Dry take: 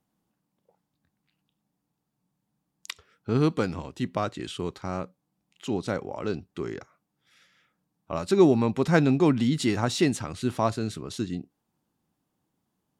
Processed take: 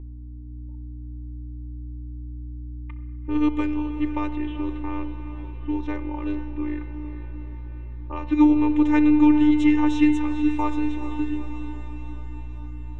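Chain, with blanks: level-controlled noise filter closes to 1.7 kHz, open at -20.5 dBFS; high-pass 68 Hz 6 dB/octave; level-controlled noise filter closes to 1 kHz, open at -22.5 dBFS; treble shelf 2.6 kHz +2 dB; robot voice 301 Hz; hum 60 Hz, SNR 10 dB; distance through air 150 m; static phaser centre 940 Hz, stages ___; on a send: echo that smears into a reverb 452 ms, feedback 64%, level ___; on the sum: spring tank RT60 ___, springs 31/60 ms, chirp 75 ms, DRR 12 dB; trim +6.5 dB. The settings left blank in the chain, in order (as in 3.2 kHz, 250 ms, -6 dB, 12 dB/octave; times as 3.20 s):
8, -11 dB, 1.6 s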